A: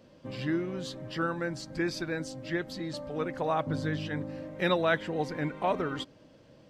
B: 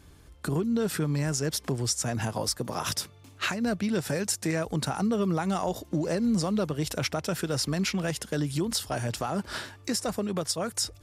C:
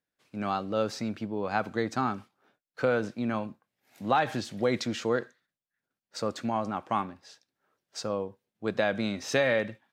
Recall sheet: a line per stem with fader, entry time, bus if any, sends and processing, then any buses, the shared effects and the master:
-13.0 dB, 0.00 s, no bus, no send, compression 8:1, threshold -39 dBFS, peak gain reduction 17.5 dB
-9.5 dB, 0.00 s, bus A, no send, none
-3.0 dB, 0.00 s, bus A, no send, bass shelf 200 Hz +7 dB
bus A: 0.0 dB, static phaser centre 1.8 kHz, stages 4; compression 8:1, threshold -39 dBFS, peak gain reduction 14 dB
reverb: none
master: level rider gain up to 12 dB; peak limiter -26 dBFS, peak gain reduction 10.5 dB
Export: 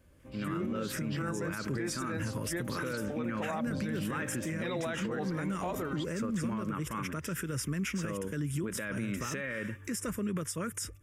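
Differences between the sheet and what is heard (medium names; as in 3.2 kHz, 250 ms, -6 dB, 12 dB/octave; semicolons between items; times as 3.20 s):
stem A: missing compression 8:1, threshold -39 dBFS, peak gain reduction 17.5 dB; stem C: missing bass shelf 200 Hz +7 dB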